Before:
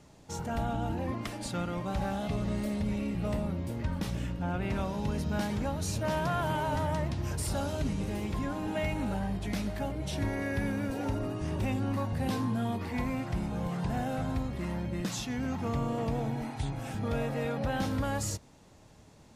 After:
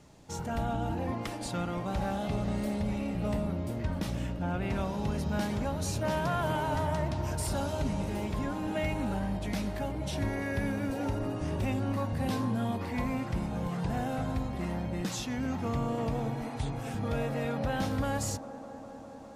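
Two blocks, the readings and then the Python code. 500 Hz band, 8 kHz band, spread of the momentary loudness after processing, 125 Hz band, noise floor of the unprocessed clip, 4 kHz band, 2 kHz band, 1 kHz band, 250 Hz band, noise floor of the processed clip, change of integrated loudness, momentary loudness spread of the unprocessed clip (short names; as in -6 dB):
+1.0 dB, 0.0 dB, 4 LU, 0.0 dB, -56 dBFS, 0.0 dB, 0.0 dB, +0.5 dB, 0.0 dB, -44 dBFS, +0.5 dB, 4 LU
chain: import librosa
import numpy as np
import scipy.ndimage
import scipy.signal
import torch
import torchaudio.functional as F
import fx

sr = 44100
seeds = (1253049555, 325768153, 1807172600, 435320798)

y = fx.echo_wet_bandpass(x, sr, ms=202, feedback_pct=85, hz=570.0, wet_db=-12.0)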